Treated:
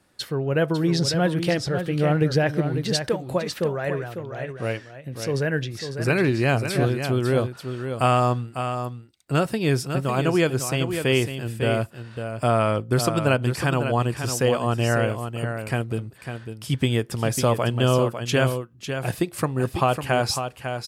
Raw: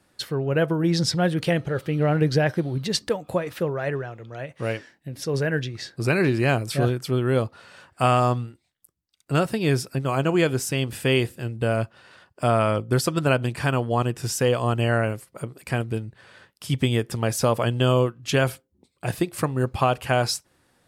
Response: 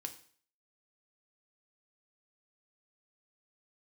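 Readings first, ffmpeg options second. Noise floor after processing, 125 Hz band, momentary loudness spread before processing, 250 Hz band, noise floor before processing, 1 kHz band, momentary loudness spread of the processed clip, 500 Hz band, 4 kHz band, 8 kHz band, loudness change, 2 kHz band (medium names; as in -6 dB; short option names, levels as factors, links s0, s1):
-46 dBFS, +0.5 dB, 11 LU, +0.5 dB, -69 dBFS, +0.5 dB, 10 LU, +0.5 dB, +0.5 dB, +0.5 dB, 0.0 dB, +0.5 dB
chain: -af "aecho=1:1:550:0.398"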